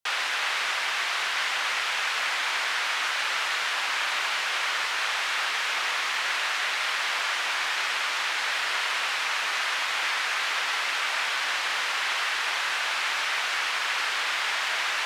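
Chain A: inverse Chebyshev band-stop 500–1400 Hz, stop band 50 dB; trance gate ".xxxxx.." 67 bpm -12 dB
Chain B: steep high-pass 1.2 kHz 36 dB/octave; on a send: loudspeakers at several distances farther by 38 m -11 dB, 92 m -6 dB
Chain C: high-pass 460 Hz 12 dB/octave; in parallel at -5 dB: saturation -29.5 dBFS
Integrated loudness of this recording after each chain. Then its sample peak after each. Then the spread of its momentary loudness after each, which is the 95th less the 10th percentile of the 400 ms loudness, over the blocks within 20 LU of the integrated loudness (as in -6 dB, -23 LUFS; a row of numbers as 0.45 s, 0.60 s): -31.5 LUFS, -24.5 LUFS, -23.0 LUFS; -19.0 dBFS, -14.0 dBFS, -13.0 dBFS; 12 LU, 0 LU, 0 LU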